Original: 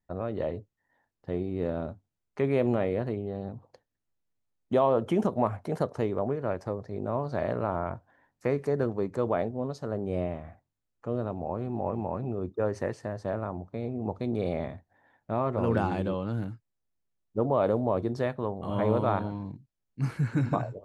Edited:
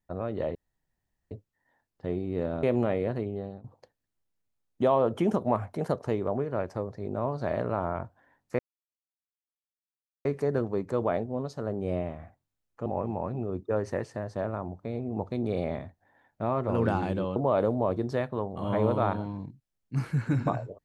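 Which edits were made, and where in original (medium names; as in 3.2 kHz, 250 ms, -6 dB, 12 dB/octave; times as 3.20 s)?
0.55 s: insert room tone 0.76 s
1.87–2.54 s: delete
3.30–3.55 s: fade out, to -15.5 dB
8.50 s: insert silence 1.66 s
11.11–11.75 s: delete
16.25–17.42 s: delete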